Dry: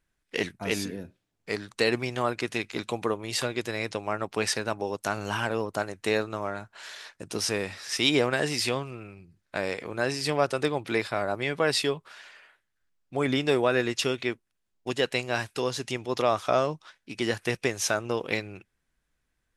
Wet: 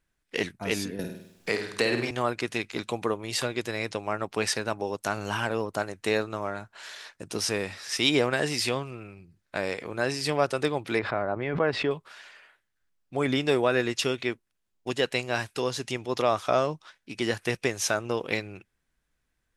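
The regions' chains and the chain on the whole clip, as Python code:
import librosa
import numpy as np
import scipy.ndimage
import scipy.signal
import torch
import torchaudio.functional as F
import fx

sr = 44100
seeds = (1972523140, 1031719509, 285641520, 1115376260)

y = fx.chain(x, sr, fx.hum_notches(base_hz=50, count=8),
    fx.room_flutter(wall_m=8.7, rt60_s=0.53),
    fx.band_squash(depth_pct=70), at=(0.99, 2.11))
y = fx.chain(y, sr, fx.lowpass(hz=1700.0, slope=12),
    fx.pre_swell(db_per_s=75.0), at=(10.99, 11.91))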